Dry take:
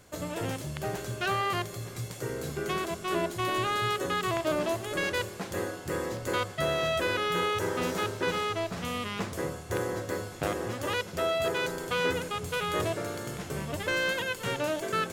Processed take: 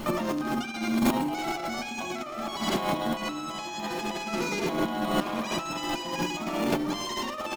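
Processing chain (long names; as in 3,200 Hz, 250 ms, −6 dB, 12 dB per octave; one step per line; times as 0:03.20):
high-shelf EQ 4,700 Hz −8.5 dB
repeating echo 133 ms, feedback 53%, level −5.5 dB
on a send at −5.5 dB: convolution reverb RT60 0.50 s, pre-delay 7 ms
on the sum: compressor whose output falls as the input rises −40 dBFS, ratio −1
low-shelf EQ 210 Hz +9.5 dB
wrong playback speed 7.5 ips tape played at 15 ips
level +6 dB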